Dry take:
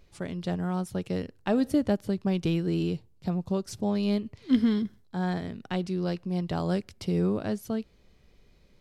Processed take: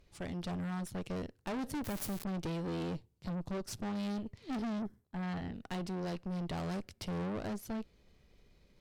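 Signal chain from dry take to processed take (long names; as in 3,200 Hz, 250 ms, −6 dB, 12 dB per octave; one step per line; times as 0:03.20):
0:01.84–0:02.24: spike at every zero crossing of −19 dBFS
0:04.78–0:05.53: parametric band 2,600 Hz → 9,700 Hz −13.5 dB 1.4 octaves
tube saturation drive 36 dB, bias 0.8
level +1 dB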